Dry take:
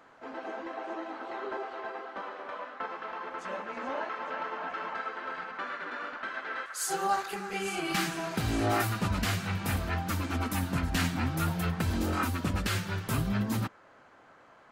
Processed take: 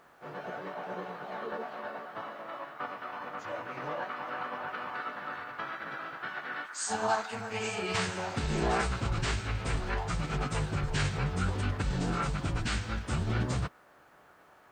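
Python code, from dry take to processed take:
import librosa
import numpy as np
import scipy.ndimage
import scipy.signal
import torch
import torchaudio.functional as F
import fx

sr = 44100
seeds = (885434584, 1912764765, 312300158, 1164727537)

y = fx.pitch_keep_formants(x, sr, semitones=-10.0)
y = fx.quant_dither(y, sr, seeds[0], bits=12, dither='none')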